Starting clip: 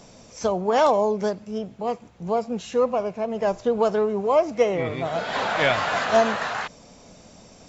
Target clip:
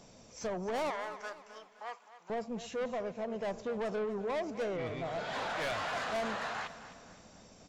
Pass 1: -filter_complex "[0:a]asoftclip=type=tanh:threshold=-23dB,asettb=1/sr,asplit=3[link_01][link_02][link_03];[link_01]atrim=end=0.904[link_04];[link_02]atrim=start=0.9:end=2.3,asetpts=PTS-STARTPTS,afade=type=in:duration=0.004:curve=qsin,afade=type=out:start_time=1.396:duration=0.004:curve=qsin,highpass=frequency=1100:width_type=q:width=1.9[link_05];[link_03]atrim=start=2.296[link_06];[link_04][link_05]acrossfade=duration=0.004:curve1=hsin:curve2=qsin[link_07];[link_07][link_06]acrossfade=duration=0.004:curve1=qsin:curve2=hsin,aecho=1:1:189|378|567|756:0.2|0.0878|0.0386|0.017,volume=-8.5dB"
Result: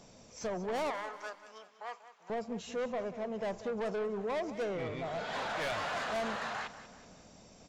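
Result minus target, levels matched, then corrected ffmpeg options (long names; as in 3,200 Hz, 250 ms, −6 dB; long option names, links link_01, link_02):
echo 68 ms early
-filter_complex "[0:a]asoftclip=type=tanh:threshold=-23dB,asettb=1/sr,asplit=3[link_01][link_02][link_03];[link_01]atrim=end=0.904[link_04];[link_02]atrim=start=0.9:end=2.3,asetpts=PTS-STARTPTS,afade=type=in:duration=0.004:curve=qsin,afade=type=out:start_time=1.396:duration=0.004:curve=qsin,highpass=frequency=1100:width_type=q:width=1.9[link_05];[link_03]atrim=start=2.296[link_06];[link_04][link_05]acrossfade=duration=0.004:curve1=hsin:curve2=qsin[link_07];[link_07][link_06]acrossfade=duration=0.004:curve1=qsin:curve2=hsin,aecho=1:1:257|514|771|1028:0.2|0.0878|0.0386|0.017,volume=-8.5dB"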